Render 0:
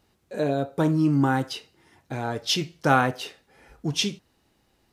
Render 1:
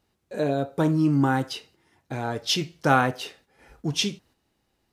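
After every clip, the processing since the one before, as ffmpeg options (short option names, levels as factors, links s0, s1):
-af "agate=range=0.501:threshold=0.00178:ratio=16:detection=peak"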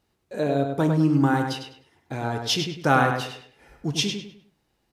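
-filter_complex "[0:a]asplit=2[s0][s1];[s1]adelay=101,lowpass=f=4100:p=1,volume=0.562,asplit=2[s2][s3];[s3]adelay=101,lowpass=f=4100:p=1,volume=0.34,asplit=2[s4][s5];[s5]adelay=101,lowpass=f=4100:p=1,volume=0.34,asplit=2[s6][s7];[s7]adelay=101,lowpass=f=4100:p=1,volume=0.34[s8];[s0][s2][s4][s6][s8]amix=inputs=5:normalize=0"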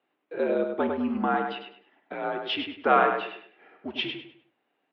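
-af "highpass=f=360:t=q:w=0.5412,highpass=f=360:t=q:w=1.307,lowpass=f=3200:t=q:w=0.5176,lowpass=f=3200:t=q:w=0.7071,lowpass=f=3200:t=q:w=1.932,afreqshift=-67"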